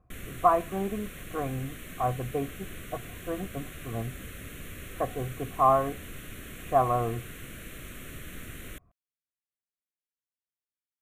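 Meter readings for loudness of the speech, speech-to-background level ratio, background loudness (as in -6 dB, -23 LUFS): -30.0 LUFS, 13.0 dB, -43.0 LUFS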